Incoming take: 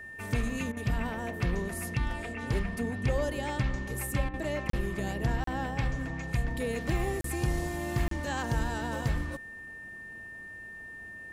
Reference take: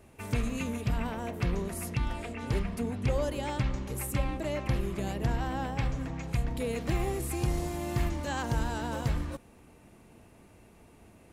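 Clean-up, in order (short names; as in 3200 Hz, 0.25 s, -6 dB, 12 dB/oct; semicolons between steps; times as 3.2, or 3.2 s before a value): notch 1800 Hz, Q 30; interpolate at 4.7/5.44/7.21/8.08, 33 ms; interpolate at 0.72/4.29, 46 ms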